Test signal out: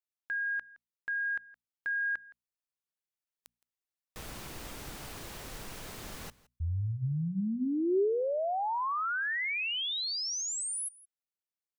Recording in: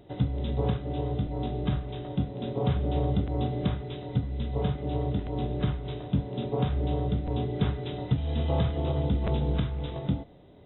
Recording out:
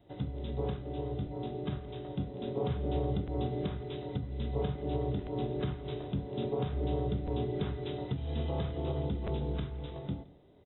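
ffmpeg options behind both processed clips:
ffmpeg -i in.wav -filter_complex "[0:a]dynaudnorm=framelen=240:gausssize=21:maxgain=4dB,alimiter=limit=-16.5dB:level=0:latency=1:release=272,asplit=2[link_01][link_02];[link_02]aecho=0:1:167:0.0841[link_03];[link_01][link_03]amix=inputs=2:normalize=0,adynamicequalizer=threshold=0.00562:dfrequency=390:dqfactor=4.3:tfrequency=390:tqfactor=4.3:attack=5:release=100:ratio=0.375:range=3:mode=boostabove:tftype=bell,bandreject=frequency=60:width_type=h:width=6,bandreject=frequency=120:width_type=h:width=6,bandreject=frequency=180:width_type=h:width=6,bandreject=frequency=240:width_type=h:width=6,volume=-7dB" out.wav

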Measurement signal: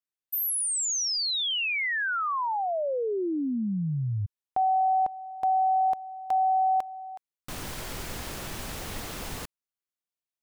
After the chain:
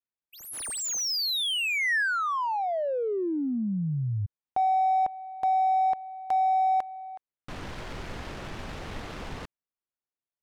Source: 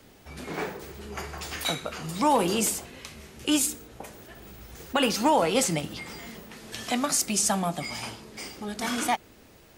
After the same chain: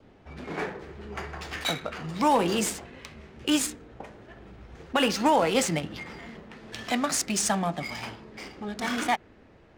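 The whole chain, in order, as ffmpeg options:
ffmpeg -i in.wav -af "adynamicsmooth=sensitivity=8:basefreq=2300,adynamicequalizer=threshold=0.00501:dfrequency=1800:dqfactor=3.3:tfrequency=1800:tqfactor=3.3:attack=5:release=100:ratio=0.375:range=2:mode=boostabove:tftype=bell" out.wav

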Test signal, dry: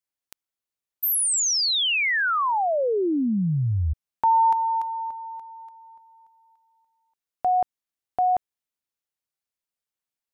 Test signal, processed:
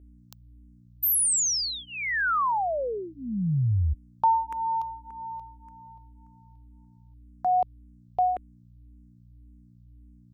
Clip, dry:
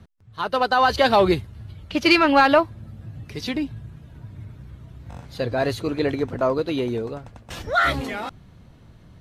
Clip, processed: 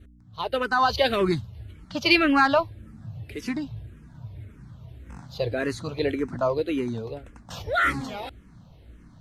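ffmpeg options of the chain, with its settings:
ffmpeg -i in.wav -filter_complex "[0:a]adynamicequalizer=threshold=0.0224:dfrequency=710:dqfactor=1.1:tfrequency=710:tqfactor=1.1:attack=5:release=100:ratio=0.375:range=2.5:mode=cutabove:tftype=bell,aeval=exprs='val(0)+0.00398*(sin(2*PI*60*n/s)+sin(2*PI*2*60*n/s)/2+sin(2*PI*3*60*n/s)/3+sin(2*PI*4*60*n/s)/4+sin(2*PI*5*60*n/s)/5)':channel_layout=same,asplit=2[link_01][link_02];[link_02]afreqshift=-1.8[link_03];[link_01][link_03]amix=inputs=2:normalize=1" out.wav

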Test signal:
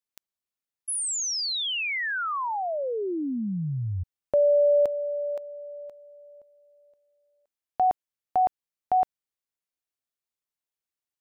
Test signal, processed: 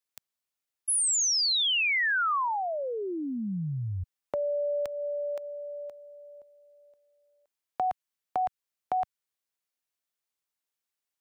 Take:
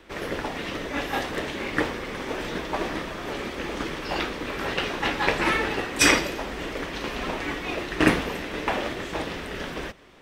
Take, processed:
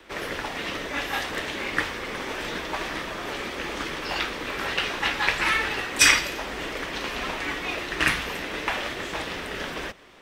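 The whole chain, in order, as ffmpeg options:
ffmpeg -i in.wav -filter_complex "[0:a]lowshelf=frequency=400:gain=-6.5,acrossover=split=140|1100|2200[link_01][link_02][link_03][link_04];[link_02]acompressor=threshold=-34dB:ratio=6:attack=5.9:release=396:knee=1:detection=peak[link_05];[link_01][link_05][link_03][link_04]amix=inputs=4:normalize=0,volume=3dB" out.wav

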